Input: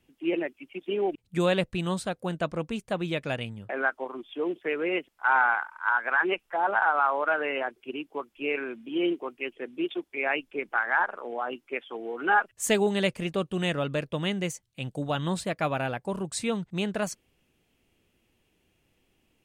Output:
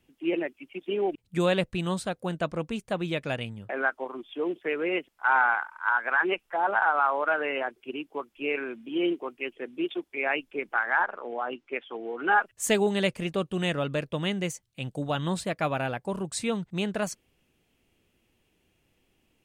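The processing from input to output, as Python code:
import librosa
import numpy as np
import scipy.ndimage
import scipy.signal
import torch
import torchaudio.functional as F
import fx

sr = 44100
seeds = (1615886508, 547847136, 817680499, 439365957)

y = fx.lowpass(x, sr, hz=5200.0, slope=12, at=(11.01, 12.29))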